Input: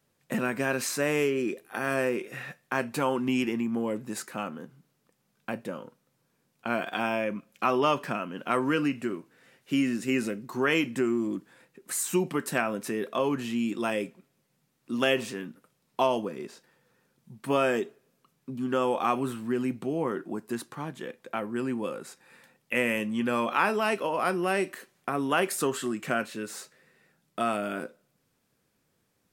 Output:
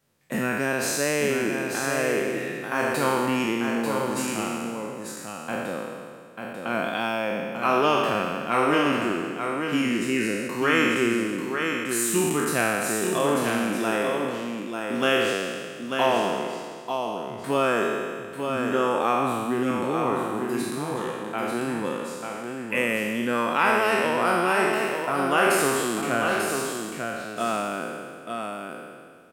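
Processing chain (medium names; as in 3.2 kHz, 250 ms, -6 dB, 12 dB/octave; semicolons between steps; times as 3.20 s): spectral sustain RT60 1.92 s; on a send: delay 892 ms -5.5 dB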